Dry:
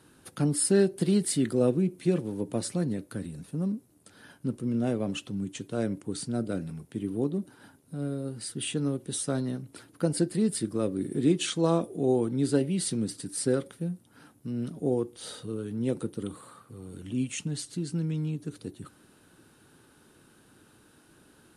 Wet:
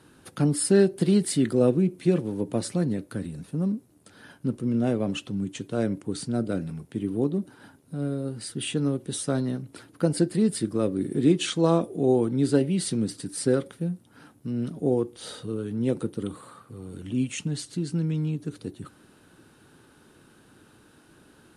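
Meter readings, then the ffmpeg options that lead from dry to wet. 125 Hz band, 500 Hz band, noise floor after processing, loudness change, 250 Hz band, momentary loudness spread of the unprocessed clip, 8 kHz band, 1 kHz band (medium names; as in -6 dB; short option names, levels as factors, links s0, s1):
+3.5 dB, +3.5 dB, -57 dBFS, +3.5 dB, +3.5 dB, 13 LU, -0.5 dB, +3.5 dB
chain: -af "highshelf=f=6900:g=-6,volume=1.5"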